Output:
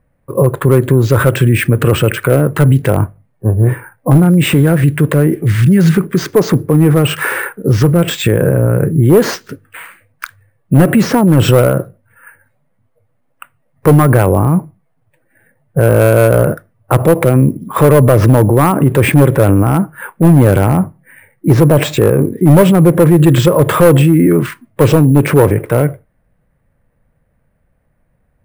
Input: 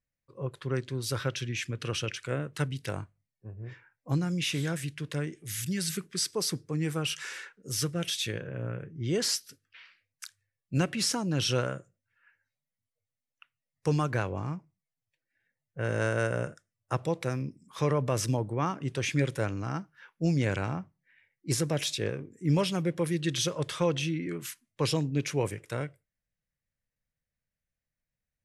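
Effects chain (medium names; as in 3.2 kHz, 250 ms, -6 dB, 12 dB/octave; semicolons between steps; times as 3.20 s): low-pass 1 kHz 12 dB/octave; bass shelf 260 Hz -3.5 dB; sample-and-hold 4×; overload inside the chain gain 26 dB; loudness maximiser +35 dB; trim -1 dB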